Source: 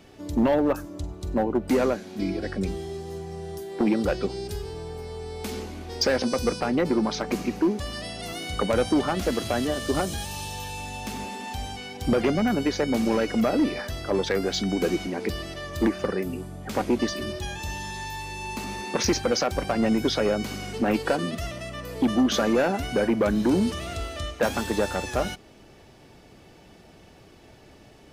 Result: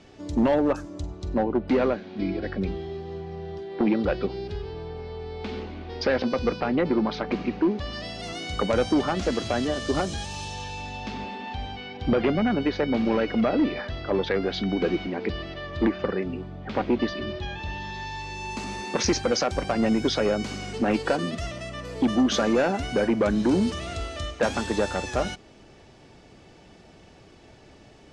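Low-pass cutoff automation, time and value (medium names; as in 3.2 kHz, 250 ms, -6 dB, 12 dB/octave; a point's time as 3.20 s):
low-pass 24 dB/octave
1.00 s 7.6 kHz
1.78 s 4 kHz
7.67 s 4 kHz
8.20 s 7.3 kHz
10.43 s 7.3 kHz
11.39 s 4 kHz
17.73 s 4 kHz
18.67 s 8.4 kHz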